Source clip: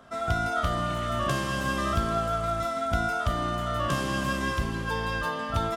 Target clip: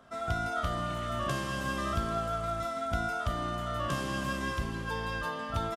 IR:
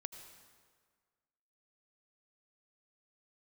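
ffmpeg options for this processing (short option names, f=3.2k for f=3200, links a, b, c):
-af "aresample=32000,aresample=44100,volume=-5dB"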